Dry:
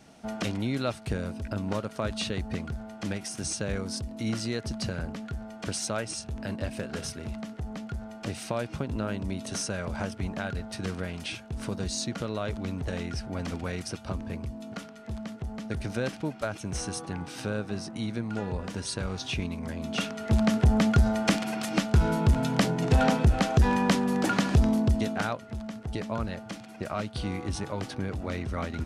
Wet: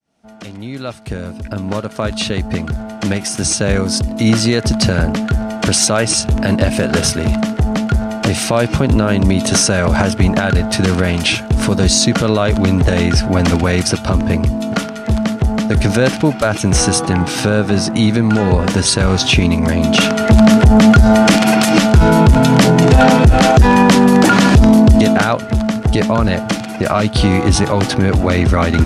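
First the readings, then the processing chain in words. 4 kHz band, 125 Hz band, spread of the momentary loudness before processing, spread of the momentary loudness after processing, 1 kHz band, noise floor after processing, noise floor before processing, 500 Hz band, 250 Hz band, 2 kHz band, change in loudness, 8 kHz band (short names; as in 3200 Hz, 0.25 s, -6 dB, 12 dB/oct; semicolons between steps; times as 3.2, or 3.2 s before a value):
+18.0 dB, +16.0 dB, 13 LU, 10 LU, +17.0 dB, -27 dBFS, -46 dBFS, +17.5 dB, +17.5 dB, +17.0 dB, +17.0 dB, +19.0 dB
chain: opening faded in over 5.97 s; maximiser +22 dB; gain -1 dB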